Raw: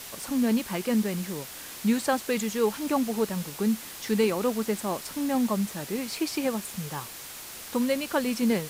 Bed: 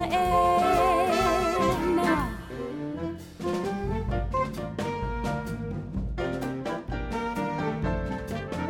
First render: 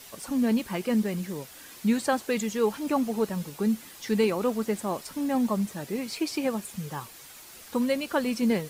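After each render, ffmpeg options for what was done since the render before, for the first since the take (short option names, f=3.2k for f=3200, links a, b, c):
-af "afftdn=nr=8:nf=-42"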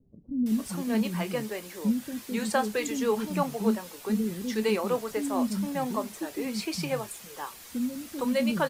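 -filter_complex "[0:a]asplit=2[a][b];[b]adelay=28,volume=-13dB[c];[a][c]amix=inputs=2:normalize=0,acrossover=split=310[d][e];[e]adelay=460[f];[d][f]amix=inputs=2:normalize=0"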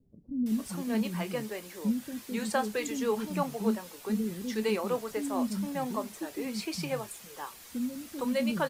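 -af "volume=-3dB"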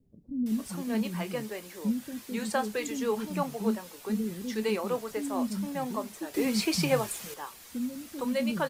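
-filter_complex "[0:a]asplit=3[a][b][c];[a]atrim=end=6.342[d];[b]atrim=start=6.338:end=7.342,asetpts=PTS-STARTPTS,volume=7.5dB[e];[c]atrim=start=7.338[f];[d][e]acrossfade=d=0.004:c1=hsin:c2=hsin[g];[g][f]acrossfade=d=0.004:c1=hsin:c2=hsin"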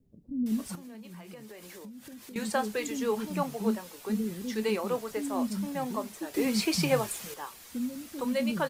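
-filter_complex "[0:a]asettb=1/sr,asplit=3[a][b][c];[a]atrim=end=0.754[d];[b]atrim=start=0.75:end=2.36,asetpts=PTS-STARTPTS,afade=t=in:d=0.004:c=qsin,afade=t=out:st=1.606:d=0.004:c=qsin,acompressor=threshold=-42dB:ratio=16:attack=3.2:release=140:knee=1:detection=peak[e];[c]atrim=start=2.356[f];[d][e]acrossfade=d=0.004:c1=hsin:c2=qsin[g];[g][f]acrossfade=d=0.004:c1=qsin:c2=hsin"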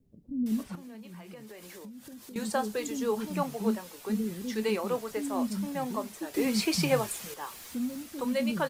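-filter_complex "[0:a]asettb=1/sr,asplit=3[a][b][c];[a]atrim=end=0.634[d];[b]atrim=start=0.63:end=1.47,asetpts=PTS-STARTPTS,afade=t=in:d=0.004:c=qsin,afade=t=out:st=0.836:d=0.004:c=qsin,acrossover=split=3500[e][f];[f]acompressor=threshold=-58dB:ratio=4:attack=1:release=60[g];[e][g]amix=inputs=2:normalize=0[h];[c]atrim=start=1.466[i];[d][h]acrossfade=d=0.004:c1=hsin:c2=qsin[j];[j][i]acrossfade=d=0.004:c1=qsin:c2=hsin,asettb=1/sr,asplit=3[k][l][m];[k]atrim=end=2.024[n];[l]atrim=start=2.02:end=3.21,asetpts=PTS-STARTPTS,afade=t=in:d=0.004:c=qsin,afade=t=out:st=1.186:d=0.004:c=qsin,equalizer=f=2.2k:w=1.5:g=-5.5[o];[m]atrim=start=3.206[p];[n][o]acrossfade=d=0.004:c1=hsin:c2=qsin[q];[q][p]acrossfade=d=0.004:c1=qsin:c2=hsin,asettb=1/sr,asplit=3[r][s][t];[r]atrim=end=7.414[u];[s]atrim=start=7.41:end=8.03,asetpts=PTS-STARTPTS,afade=t=in:d=0.004:c=qsin,afade=t=out:st=0.616:d=0.004:c=qsin,aeval=exprs='val(0)+0.5*0.00398*sgn(val(0))':c=same[v];[t]atrim=start=8.026[w];[u][v]acrossfade=d=0.004:c1=hsin:c2=qsin[x];[x][w]acrossfade=d=0.004:c1=qsin:c2=hsin"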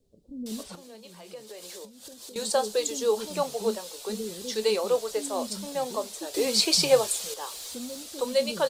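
-af "equalizer=f=125:t=o:w=1:g=-8,equalizer=f=250:t=o:w=1:g=-7,equalizer=f=500:t=o:w=1:g=9,equalizer=f=2k:t=o:w=1:g=-5,equalizer=f=4k:t=o:w=1:g=11,equalizer=f=8k:t=o:w=1:g=8"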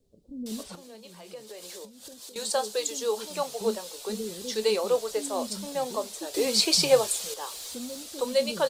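-filter_complex "[0:a]asettb=1/sr,asplit=3[a][b][c];[a]atrim=end=2.204[d];[b]atrim=start=2.2:end=3.61,asetpts=PTS-STARTPTS,afade=t=in:d=0.004:c=qsin,afade=t=out:st=1.406:d=0.004:c=qsin,lowshelf=f=420:g=-8[e];[c]atrim=start=3.606[f];[d][e]acrossfade=d=0.004:c1=hsin:c2=qsin[g];[g][f]acrossfade=d=0.004:c1=qsin:c2=hsin"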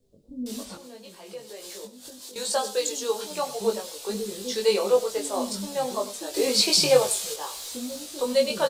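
-filter_complex "[0:a]asplit=2[a][b];[b]adelay=20,volume=-2dB[c];[a][c]amix=inputs=2:normalize=0,aecho=1:1:97:0.178"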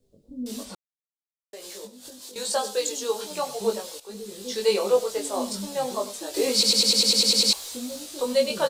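-filter_complex "[0:a]asplit=14[a][b][c][d][e][f][g][h][i][j][k][l][m][n];[a]atrim=end=0.75,asetpts=PTS-STARTPTS,afade=t=out:st=0.746:d=0.004:c=hsin[o];[b]atrim=start=0.75:end=1.53,asetpts=PTS-STARTPTS,volume=0[p];[c]atrim=start=1.53:end=4,asetpts=PTS-STARTPTS,afade=t=in:d=0.004:c=hsin,afade=t=out:st=2.466:d=0.004:c=hsin:silence=0.211349[q];[d]atrim=start=4:end=6.632,asetpts=PTS-STARTPTS,afade=t=in:d=0.67:silence=0.211349[r];[e]atrim=start=6.528:end=6.632[s];[f]atrim=start=6.528:end=6.632[t];[g]atrim=start=6.528:end=6.632[u];[h]atrim=start=6.528:end=6.632[v];[i]atrim=start=6.528:end=6.632[w];[j]atrim=start=6.528:end=6.632[x];[k]atrim=start=6.528:end=6.632[y];[l]atrim=start=6.528:end=6.632[z];[m]atrim=start=6.528:end=6.632[aa];[n]atrim=start=7.528[ab];[o][p][q][r]concat=n=4:v=0:a=1[ac];[ac][s]acrossfade=d=0.004:c1=hsin:c2=hsin[ad];[ad][t]acrossfade=d=0.004:c1=hsin:c2=hsin[ae];[ae][u]acrossfade=d=0.004:c1=hsin:c2=hsin[af];[af][v]acrossfade=d=0.004:c1=hsin:c2=hsin[ag];[ag][w]acrossfade=d=0.004:c1=hsin:c2=hsin[ah];[ah][x]acrossfade=d=0.004:c1=hsin:c2=hsin[ai];[ai][y]acrossfade=d=0.004:c1=hsin:c2=hsin[aj];[aj][z]acrossfade=d=0.004:c1=hsin:c2=hsin[ak];[ak][aa]acrossfade=d=0.004:c1=hsin:c2=hsin[al];[al][ab]acrossfade=d=0.004:c1=hsin:c2=hsin"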